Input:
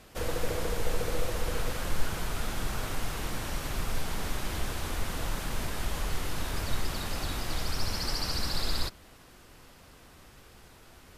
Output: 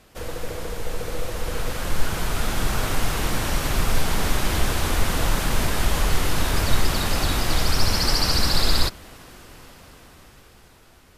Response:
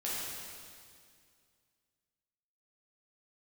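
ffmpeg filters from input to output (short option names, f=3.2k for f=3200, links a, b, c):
-af "dynaudnorm=f=440:g=9:m=11.5dB"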